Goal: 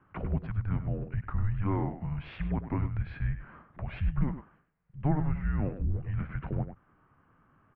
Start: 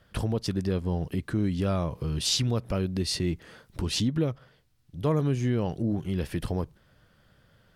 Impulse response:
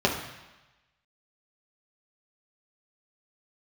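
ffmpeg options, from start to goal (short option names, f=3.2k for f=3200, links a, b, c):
-filter_complex "[0:a]asplit=2[a][b];[b]adelay=100,highpass=300,lowpass=3.4k,asoftclip=type=hard:threshold=-23.5dB,volume=-9dB[c];[a][c]amix=inputs=2:normalize=0,highpass=f=160:t=q:w=0.5412,highpass=f=160:t=q:w=1.307,lowpass=f=2.3k:t=q:w=0.5176,lowpass=f=2.3k:t=q:w=0.7071,lowpass=f=2.3k:t=q:w=1.932,afreqshift=-300"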